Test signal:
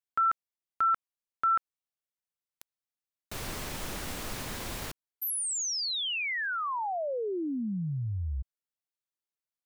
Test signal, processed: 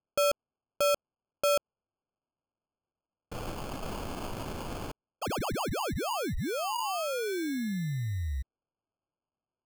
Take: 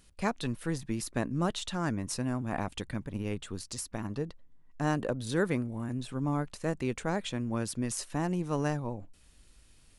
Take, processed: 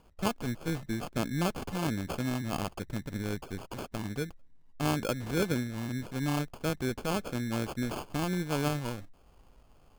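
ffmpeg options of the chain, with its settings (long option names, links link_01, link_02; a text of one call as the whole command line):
ffmpeg -i in.wav -af "acrusher=samples=23:mix=1:aa=0.000001" out.wav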